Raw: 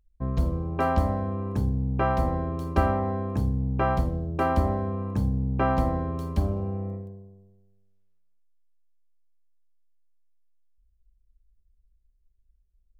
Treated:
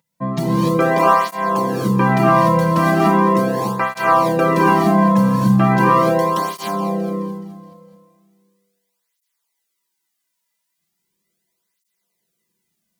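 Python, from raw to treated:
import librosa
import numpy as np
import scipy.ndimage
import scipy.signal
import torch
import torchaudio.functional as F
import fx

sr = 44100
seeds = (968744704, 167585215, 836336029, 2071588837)

p1 = scipy.signal.sosfilt(scipy.signal.butter(4, 150.0, 'highpass', fs=sr, output='sos'), x)
p2 = fx.high_shelf(p1, sr, hz=2600.0, db=8.5)
p3 = p2 + 0.48 * np.pad(p2, (int(5.9 * sr / 1000.0), 0))[:len(p2)]
p4 = fx.over_compress(p3, sr, threshold_db=-28.0, ratio=-1.0)
p5 = p3 + F.gain(torch.from_numpy(p4), -2.0).numpy()
p6 = fx.small_body(p5, sr, hz=(950.0, 2000.0), ring_ms=100, db=16)
p7 = p6 + fx.echo_feedback(p6, sr, ms=212, feedback_pct=54, wet_db=-12.0, dry=0)
p8 = fx.rev_gated(p7, sr, seeds[0], gate_ms=320, shape='rising', drr_db=-4.5)
p9 = fx.flanger_cancel(p8, sr, hz=0.38, depth_ms=2.8)
y = F.gain(torch.from_numpy(p9), 4.5).numpy()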